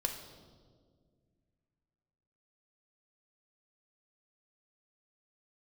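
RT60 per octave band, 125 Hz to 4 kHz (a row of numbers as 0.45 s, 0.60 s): 2.9 s, 2.6 s, 2.2 s, 1.5 s, 1.0 s, 1.2 s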